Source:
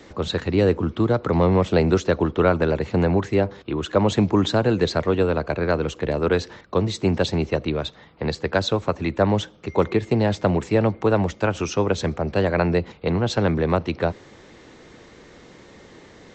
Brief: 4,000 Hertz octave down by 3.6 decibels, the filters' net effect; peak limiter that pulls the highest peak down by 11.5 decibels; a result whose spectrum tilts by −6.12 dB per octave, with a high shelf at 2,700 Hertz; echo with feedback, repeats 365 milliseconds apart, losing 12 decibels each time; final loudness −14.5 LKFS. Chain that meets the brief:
high-shelf EQ 2,700 Hz +3 dB
parametric band 4,000 Hz −6.5 dB
brickwall limiter −16 dBFS
repeating echo 365 ms, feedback 25%, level −12 dB
level +11.5 dB

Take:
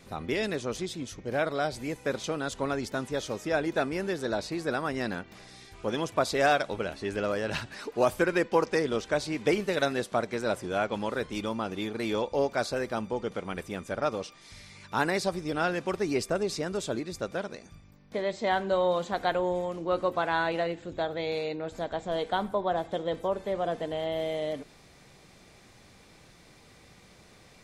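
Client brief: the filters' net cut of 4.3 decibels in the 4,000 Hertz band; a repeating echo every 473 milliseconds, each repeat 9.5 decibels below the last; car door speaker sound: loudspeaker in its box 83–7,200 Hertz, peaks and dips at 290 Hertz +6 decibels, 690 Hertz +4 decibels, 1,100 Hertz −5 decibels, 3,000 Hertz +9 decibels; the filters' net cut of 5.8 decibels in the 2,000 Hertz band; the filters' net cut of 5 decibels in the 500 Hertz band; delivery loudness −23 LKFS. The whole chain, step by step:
loudspeaker in its box 83–7,200 Hz, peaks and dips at 290 Hz +6 dB, 690 Hz +4 dB, 1,100 Hz −5 dB, 3,000 Hz +9 dB
parametric band 500 Hz −8 dB
parametric band 2,000 Hz −6 dB
parametric band 4,000 Hz −9 dB
repeating echo 473 ms, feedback 33%, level −9.5 dB
level +10.5 dB

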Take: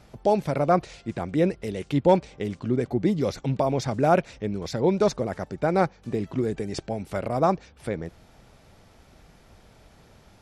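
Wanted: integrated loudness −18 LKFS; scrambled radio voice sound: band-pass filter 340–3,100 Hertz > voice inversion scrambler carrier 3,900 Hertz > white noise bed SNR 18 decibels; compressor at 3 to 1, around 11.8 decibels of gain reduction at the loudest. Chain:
downward compressor 3 to 1, threshold −30 dBFS
band-pass filter 340–3,100 Hz
voice inversion scrambler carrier 3,900 Hz
white noise bed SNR 18 dB
level +14.5 dB

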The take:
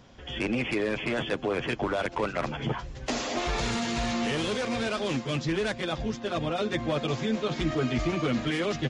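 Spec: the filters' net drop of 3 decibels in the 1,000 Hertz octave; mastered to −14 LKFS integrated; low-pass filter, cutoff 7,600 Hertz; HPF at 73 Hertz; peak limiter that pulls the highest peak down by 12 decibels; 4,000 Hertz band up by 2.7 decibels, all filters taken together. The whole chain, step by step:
high-pass filter 73 Hz
low-pass filter 7,600 Hz
parametric band 1,000 Hz −4.5 dB
parametric band 4,000 Hz +4 dB
level +22 dB
brickwall limiter −6 dBFS

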